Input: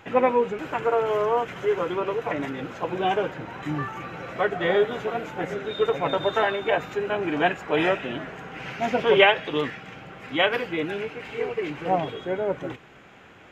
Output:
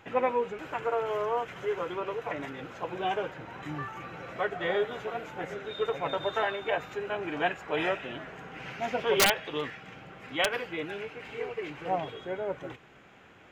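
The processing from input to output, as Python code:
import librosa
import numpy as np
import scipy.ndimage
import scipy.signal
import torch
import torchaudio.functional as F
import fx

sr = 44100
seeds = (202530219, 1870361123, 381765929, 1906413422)

y = fx.dynamic_eq(x, sr, hz=230.0, q=0.87, threshold_db=-39.0, ratio=4.0, max_db=-5)
y = (np.mod(10.0 ** (8.5 / 20.0) * y + 1.0, 2.0) - 1.0) / 10.0 ** (8.5 / 20.0)
y = y * 10.0 ** (-5.5 / 20.0)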